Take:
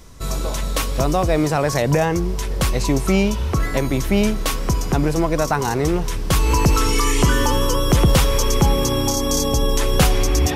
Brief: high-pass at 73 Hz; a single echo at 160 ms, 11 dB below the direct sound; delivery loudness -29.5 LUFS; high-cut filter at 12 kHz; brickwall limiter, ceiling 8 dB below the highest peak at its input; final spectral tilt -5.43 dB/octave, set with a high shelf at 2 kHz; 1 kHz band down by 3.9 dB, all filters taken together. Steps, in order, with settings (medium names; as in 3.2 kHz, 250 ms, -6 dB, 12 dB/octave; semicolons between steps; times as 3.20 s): high-pass 73 Hz; low-pass 12 kHz; peaking EQ 1 kHz -3.5 dB; treble shelf 2 kHz -6 dB; peak limiter -12.5 dBFS; delay 160 ms -11 dB; trim -6.5 dB